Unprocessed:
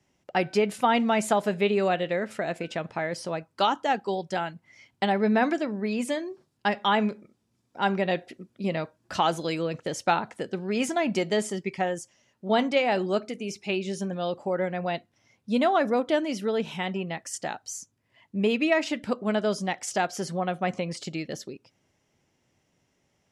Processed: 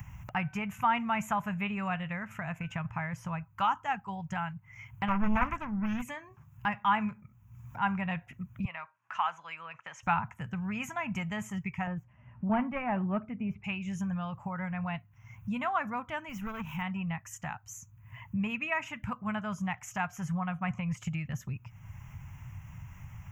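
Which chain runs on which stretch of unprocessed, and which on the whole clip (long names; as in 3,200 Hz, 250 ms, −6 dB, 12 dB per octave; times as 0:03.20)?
0:05.08–0:06.02: parametric band 110 Hz +6 dB 2.7 octaves + highs frequency-modulated by the lows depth 0.75 ms
0:08.65–0:10.03: high-pass filter 790 Hz + high-frequency loss of the air 120 metres
0:11.87–0:13.64: phase distortion by the signal itself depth 0.09 ms + high-frequency loss of the air 500 metres + hollow resonant body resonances 250/380/590 Hz, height 9 dB, ringing for 25 ms
0:16.29–0:16.82: noise gate −27 dBFS, range −9 dB + leveller curve on the samples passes 2 + downward compressor 2 to 1, threshold −26 dBFS
whole clip: drawn EQ curve 120 Hz 0 dB, 360 Hz −29 dB, 540 Hz −22 dB, 1,000 Hz +1 dB, 1,800 Hz −5 dB, 2,600 Hz −3 dB, 4,400 Hz −30 dB, 6,600 Hz −6 dB, 9,500 Hz −20 dB, 14,000 Hz +10 dB; upward compression, threshold −37 dBFS; bass and treble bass +13 dB, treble −2 dB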